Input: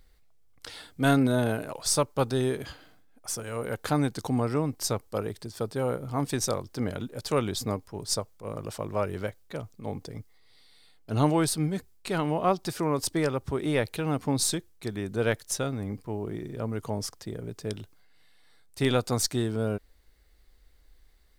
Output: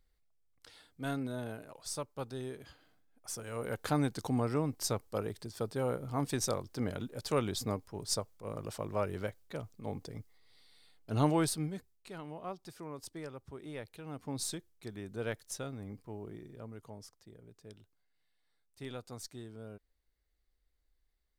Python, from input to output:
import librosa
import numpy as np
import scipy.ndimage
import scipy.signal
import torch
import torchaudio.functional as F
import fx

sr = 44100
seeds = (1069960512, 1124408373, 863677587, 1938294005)

y = fx.gain(x, sr, db=fx.line((2.62, -14.5), (3.68, -5.0), (11.43, -5.0), (12.15, -17.5), (14.01, -17.5), (14.41, -11.0), (16.24, -11.0), (17.11, -19.0)))